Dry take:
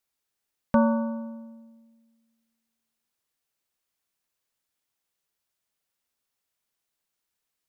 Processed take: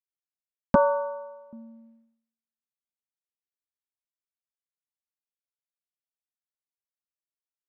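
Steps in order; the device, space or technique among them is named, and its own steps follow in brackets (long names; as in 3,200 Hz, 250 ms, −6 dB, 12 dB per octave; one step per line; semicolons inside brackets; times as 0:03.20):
hearing-loss simulation (low-pass filter 1,600 Hz; downward expander −58 dBFS)
0:00.75–0:01.53: Butterworth high-pass 310 Hz 96 dB per octave
level +5 dB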